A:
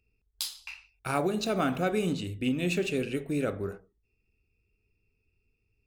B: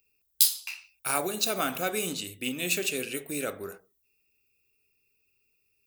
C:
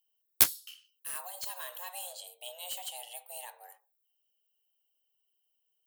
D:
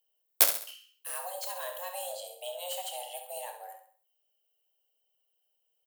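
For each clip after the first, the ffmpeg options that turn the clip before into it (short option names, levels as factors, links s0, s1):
-af "aemphasis=mode=production:type=riaa"
-af "afreqshift=360,aexciter=amount=2:drive=3.6:freq=3000,aeval=exprs='2.11*(cos(1*acos(clip(val(0)/2.11,-1,1)))-cos(1*PI/2))+0.422*(cos(7*acos(clip(val(0)/2.11,-1,1)))-cos(7*PI/2))':c=same,volume=0.422"
-filter_complex "[0:a]highpass=f=550:t=q:w=4.1,asplit=2[s0][s1];[s1]adelay=30,volume=0.282[s2];[s0][s2]amix=inputs=2:normalize=0,asplit=2[s3][s4];[s4]aecho=0:1:67|134|201|268:0.376|0.15|0.0601|0.0241[s5];[s3][s5]amix=inputs=2:normalize=0"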